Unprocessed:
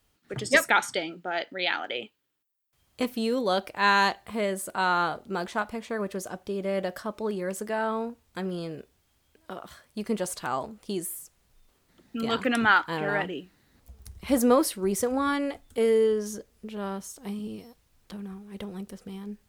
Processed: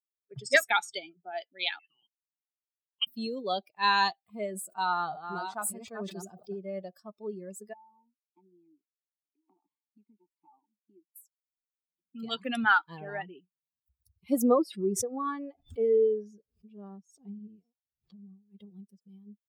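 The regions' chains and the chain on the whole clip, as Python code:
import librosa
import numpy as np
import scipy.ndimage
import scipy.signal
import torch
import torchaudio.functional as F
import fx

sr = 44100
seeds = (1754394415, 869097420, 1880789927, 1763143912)

y = fx.chain(x, sr, fx.high_shelf(hz=2100.0, db=5.5),
    fx.level_steps(step_db=24),
    fx.freq_invert(carrier_hz=3400), at=(1.79, 3.07))
y = fx.chain(y, sr, fx.reverse_delay(ms=644, wet_db=-4),
    fx.sustainer(db_per_s=46.0), at=(4.5, 6.59))
y = fx.chain(y, sr, fx.vowel_filter(vowel='u'),
    fx.band_squash(depth_pct=100), at=(7.73, 11.16))
y = fx.chain(y, sr, fx.lowpass(hz=2200.0, slope=6),
    fx.pre_swell(db_per_s=88.0), at=(14.42, 18.43))
y = fx.bin_expand(y, sr, power=2.0)
y = scipy.signal.sosfilt(scipy.signal.butter(2, 150.0, 'highpass', fs=sr, output='sos'), y)
y = fx.dynamic_eq(y, sr, hz=3800.0, q=3.9, threshold_db=-54.0, ratio=4.0, max_db=5)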